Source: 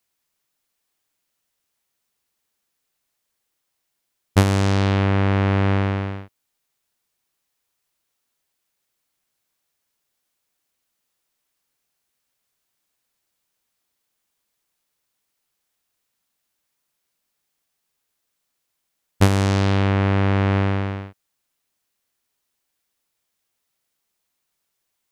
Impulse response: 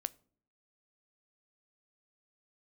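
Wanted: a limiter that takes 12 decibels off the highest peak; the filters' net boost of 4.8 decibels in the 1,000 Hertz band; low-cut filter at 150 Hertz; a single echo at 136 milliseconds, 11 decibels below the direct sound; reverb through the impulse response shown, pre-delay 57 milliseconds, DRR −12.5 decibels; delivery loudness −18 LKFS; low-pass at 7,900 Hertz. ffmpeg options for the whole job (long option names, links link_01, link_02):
-filter_complex "[0:a]highpass=150,lowpass=7900,equalizer=frequency=1000:width_type=o:gain=6,alimiter=limit=-9.5dB:level=0:latency=1,aecho=1:1:136:0.282,asplit=2[link_01][link_02];[1:a]atrim=start_sample=2205,adelay=57[link_03];[link_02][link_03]afir=irnorm=-1:irlink=0,volume=13.5dB[link_04];[link_01][link_04]amix=inputs=2:normalize=0,volume=-4.5dB"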